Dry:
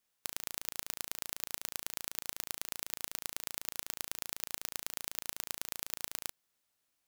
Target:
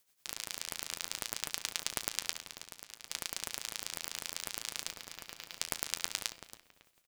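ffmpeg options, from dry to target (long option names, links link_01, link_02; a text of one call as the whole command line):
ffmpeg -i in.wav -filter_complex "[0:a]acrossover=split=7700[link_01][link_02];[link_02]acompressor=threshold=-48dB:ratio=4:attack=1:release=60[link_03];[link_01][link_03]amix=inputs=2:normalize=0,tiltshelf=frequency=970:gain=-9.5,bandreject=frequency=170.7:width_type=h:width=4,bandreject=frequency=341.4:width_type=h:width=4,bandreject=frequency=512.1:width_type=h:width=4,bandreject=frequency=682.8:width_type=h:width=4,bandreject=frequency=853.5:width_type=h:width=4,bandreject=frequency=1024.2:width_type=h:width=4,bandreject=frequency=1194.9:width_type=h:width=4,bandreject=frequency=1365.6:width_type=h:width=4,bandreject=frequency=1536.3:width_type=h:width=4,bandreject=frequency=1707:width_type=h:width=4,bandreject=frequency=1877.7:width_type=h:width=4,bandreject=frequency=2048.4:width_type=h:width=4,bandreject=frequency=2219.1:width_type=h:width=4,bandreject=frequency=2389.8:width_type=h:width=4,bandreject=frequency=2560.5:width_type=h:width=4,bandreject=frequency=2731.2:width_type=h:width=4,bandreject=frequency=2901.9:width_type=h:width=4,bandreject=frequency=3072.6:width_type=h:width=4,bandreject=frequency=3243.3:width_type=h:width=4,bandreject=frequency=3414:width_type=h:width=4,bandreject=frequency=3584.7:width_type=h:width=4,bandreject=frequency=3755.4:width_type=h:width=4,bandreject=frequency=3926.1:width_type=h:width=4,bandreject=frequency=4096.8:width_type=h:width=4,bandreject=frequency=4267.5:width_type=h:width=4,asplit=3[link_04][link_05][link_06];[link_04]afade=type=out:start_time=2.37:duration=0.02[link_07];[link_05]acompressor=threshold=-47dB:ratio=3,afade=type=in:start_time=2.37:duration=0.02,afade=type=out:start_time=3.08:duration=0.02[link_08];[link_06]afade=type=in:start_time=3.08:duration=0.02[link_09];[link_07][link_08][link_09]amix=inputs=3:normalize=0,asplit=3[link_10][link_11][link_12];[link_10]afade=type=out:start_time=4.89:duration=0.02[link_13];[link_11]asoftclip=type=hard:threshold=-26.5dB,afade=type=in:start_time=4.89:duration=0.02,afade=type=out:start_time=5.59:duration=0.02[link_14];[link_12]afade=type=in:start_time=5.59:duration=0.02[link_15];[link_13][link_14][link_15]amix=inputs=3:normalize=0,tremolo=f=9.6:d=0.67,flanger=delay=4.6:depth=9.4:regen=69:speed=0.6:shape=triangular,asplit=2[link_16][link_17];[link_17]adelay=276,lowpass=frequency=1600:poles=1,volume=-7.5dB,asplit=2[link_18][link_19];[link_19]adelay=276,lowpass=frequency=1600:poles=1,volume=0.43,asplit=2[link_20][link_21];[link_21]adelay=276,lowpass=frequency=1600:poles=1,volume=0.43,asplit=2[link_22][link_23];[link_23]adelay=276,lowpass=frequency=1600:poles=1,volume=0.43,asplit=2[link_24][link_25];[link_25]adelay=276,lowpass=frequency=1600:poles=1,volume=0.43[link_26];[link_16][link_18][link_20][link_22][link_24][link_26]amix=inputs=6:normalize=0,aeval=exprs='val(0)*sgn(sin(2*PI*1200*n/s))':channel_layout=same,volume=7dB" out.wav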